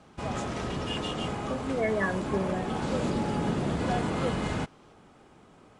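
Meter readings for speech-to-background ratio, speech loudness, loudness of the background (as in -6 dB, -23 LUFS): -1.0 dB, -32.5 LUFS, -31.5 LUFS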